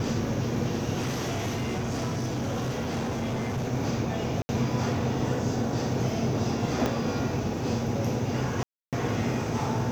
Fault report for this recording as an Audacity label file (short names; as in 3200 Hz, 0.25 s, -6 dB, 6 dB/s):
0.990000	3.660000	clipped -26 dBFS
4.420000	4.490000	gap 70 ms
6.860000	6.860000	pop -13 dBFS
8.630000	8.930000	gap 0.297 s